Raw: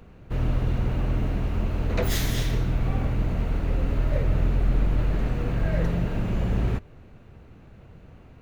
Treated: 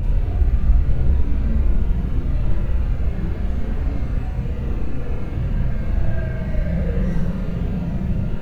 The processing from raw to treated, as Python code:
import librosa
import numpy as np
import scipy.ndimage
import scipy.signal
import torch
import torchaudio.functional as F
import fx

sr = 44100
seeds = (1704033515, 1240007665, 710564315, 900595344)

y = fx.low_shelf(x, sr, hz=180.0, db=8.5)
y = fx.paulstretch(y, sr, seeds[0], factor=5.5, window_s=0.05, from_s=4.56)
y = fx.rev_schroeder(y, sr, rt60_s=0.7, comb_ms=32, drr_db=-4.0)
y = y * librosa.db_to_amplitude(-8.5)